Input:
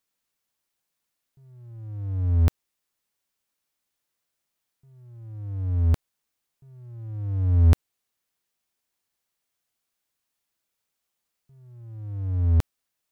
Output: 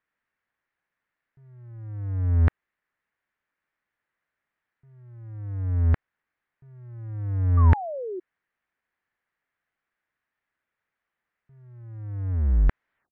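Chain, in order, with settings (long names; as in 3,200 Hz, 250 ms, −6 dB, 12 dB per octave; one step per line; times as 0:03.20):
turntable brake at the end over 0.80 s
low-pass with resonance 1,800 Hz, resonance Q 3
sound drawn into the spectrogram fall, 0:07.57–0:08.20, 350–1,200 Hz −32 dBFS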